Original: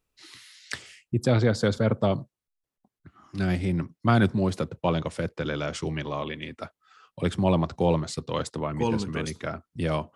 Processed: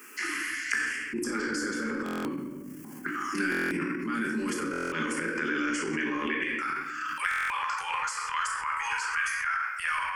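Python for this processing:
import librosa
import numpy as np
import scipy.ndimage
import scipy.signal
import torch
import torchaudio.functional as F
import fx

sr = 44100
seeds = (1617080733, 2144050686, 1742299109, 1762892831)

y = fx.steep_highpass(x, sr, hz=fx.steps((0.0, 260.0), (6.44, 840.0)), slope=36)
y = fx.over_compress(y, sr, threshold_db=-32.0, ratio=-1.0)
y = fx.peak_eq(y, sr, hz=1600.0, db=5.5, octaves=0.6)
y = fx.room_shoebox(y, sr, seeds[0], volume_m3=250.0, walls='mixed', distance_m=1.3)
y = fx.transient(y, sr, attack_db=-5, sustain_db=8)
y = fx.peak_eq(y, sr, hz=680.0, db=-5.0, octaves=1.8)
y = fx.fixed_phaser(y, sr, hz=1600.0, stages=4)
y = fx.buffer_glitch(y, sr, at_s=(2.04, 3.5, 4.71, 7.29), block=1024, repeats=8)
y = fx.band_squash(y, sr, depth_pct=100)
y = y * 10.0 ** (2.5 / 20.0)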